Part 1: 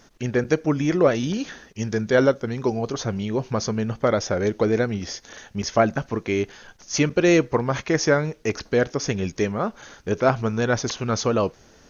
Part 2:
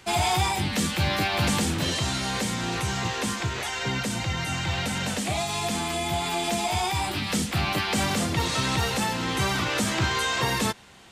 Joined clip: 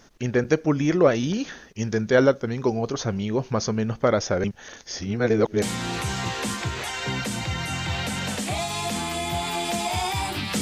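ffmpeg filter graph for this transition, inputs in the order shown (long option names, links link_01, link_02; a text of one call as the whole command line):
ffmpeg -i cue0.wav -i cue1.wav -filter_complex "[0:a]apad=whole_dur=10.61,atrim=end=10.61,asplit=2[link_01][link_02];[link_01]atrim=end=4.442[link_03];[link_02]atrim=start=4.438:end=5.622,asetpts=PTS-STARTPTS,areverse[link_04];[1:a]atrim=start=2.408:end=7.4[link_05];[link_03][link_04]acrossfade=duration=0.004:curve1=hsin:curve2=hsin[link_06];[link_06][link_05]acrossfade=duration=0.004:curve1=hsin:curve2=hsin" out.wav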